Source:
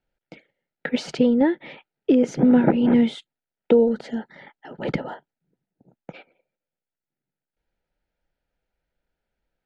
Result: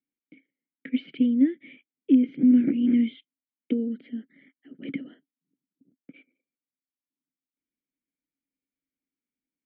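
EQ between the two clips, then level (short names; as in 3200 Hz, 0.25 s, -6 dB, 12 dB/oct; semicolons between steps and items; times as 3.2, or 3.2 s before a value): dynamic EQ 3000 Hz, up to +7 dB, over -48 dBFS, Q 1.4; vowel filter i; air absorption 440 m; +3.5 dB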